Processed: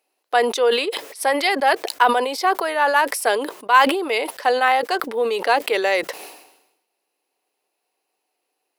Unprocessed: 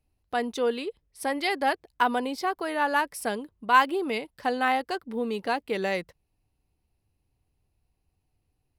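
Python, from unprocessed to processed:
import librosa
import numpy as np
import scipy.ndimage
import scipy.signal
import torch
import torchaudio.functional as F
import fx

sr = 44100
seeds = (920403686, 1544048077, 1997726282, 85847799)

y = fx.rider(x, sr, range_db=4, speed_s=0.5)
y = scipy.signal.sosfilt(scipy.signal.butter(4, 410.0, 'highpass', fs=sr, output='sos'), y)
y = fx.sustainer(y, sr, db_per_s=65.0)
y = y * 10.0 ** (8.0 / 20.0)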